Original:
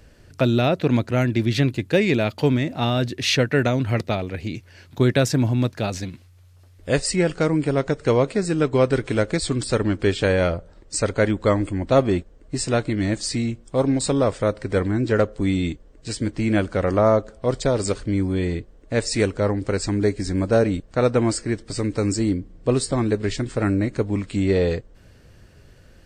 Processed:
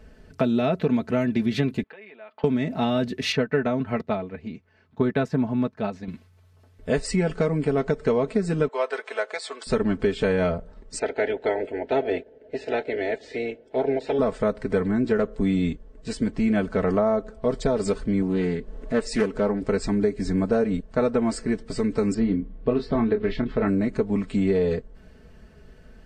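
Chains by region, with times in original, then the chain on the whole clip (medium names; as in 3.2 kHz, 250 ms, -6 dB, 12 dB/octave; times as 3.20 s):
1.83–2.44 s: compression 8:1, threshold -30 dBFS + high-pass 840 Hz + distance through air 470 m
3.32–6.08 s: low-pass 2.8 kHz 6 dB/octave + peaking EQ 1.1 kHz +4 dB 0.94 oct + upward expansion, over -37 dBFS
8.68–9.67 s: high-pass 580 Hz 24 dB/octave + treble shelf 6.9 kHz -6.5 dB
10.98–14.18 s: spectral peaks clipped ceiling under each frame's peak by 18 dB + band-pass 140–2200 Hz + static phaser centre 470 Hz, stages 4
18.22–19.63 s: peaking EQ 82 Hz -10.5 dB 0.95 oct + upward compressor, threshold -27 dBFS + loudspeaker Doppler distortion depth 0.24 ms
22.14–23.68 s: low-pass 4 kHz 24 dB/octave + doubling 26 ms -7.5 dB
whole clip: treble shelf 2.9 kHz -11 dB; comb 4.6 ms, depth 73%; compression, threshold -18 dBFS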